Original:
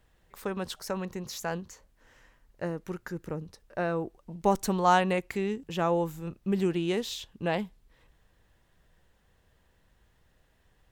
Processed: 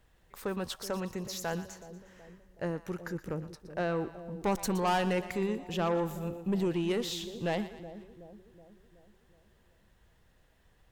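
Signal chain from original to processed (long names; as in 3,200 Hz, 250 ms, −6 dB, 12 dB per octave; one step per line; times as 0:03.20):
soft clipping −23.5 dBFS, distortion −10 dB
echo with a time of its own for lows and highs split 710 Hz, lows 373 ms, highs 119 ms, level −13 dB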